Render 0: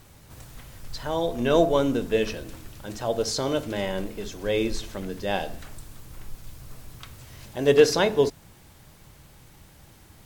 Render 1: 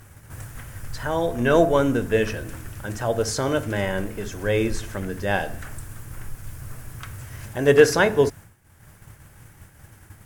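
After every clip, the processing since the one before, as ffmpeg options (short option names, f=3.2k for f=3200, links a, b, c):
-filter_complex "[0:a]equalizer=f=100:t=o:w=0.67:g=9,equalizer=f=1.6k:t=o:w=0.67:g=8,equalizer=f=4k:t=o:w=0.67:g=-8,equalizer=f=10k:t=o:w=0.67:g=5,agate=range=-33dB:threshold=-37dB:ratio=3:detection=peak,asplit=2[a][b];[b]acompressor=mode=upward:threshold=-28dB:ratio=2.5,volume=0dB[c];[a][c]amix=inputs=2:normalize=0,volume=-4dB"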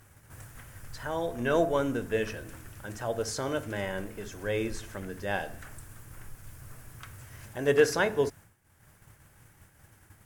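-af "lowshelf=f=210:g=-4,volume=-7.5dB"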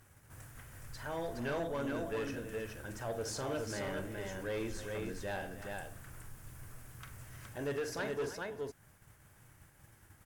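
-filter_complex "[0:a]alimiter=limit=-18dB:level=0:latency=1:release=423,asplit=2[a][b];[b]aecho=0:1:43|314|418:0.266|0.168|0.596[c];[a][c]amix=inputs=2:normalize=0,asoftclip=type=tanh:threshold=-26dB,volume=-5dB"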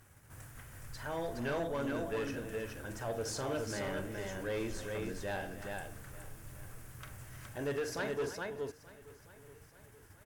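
-af "aecho=1:1:881|1762|2643|3524:0.1|0.047|0.0221|0.0104,volume=1dB"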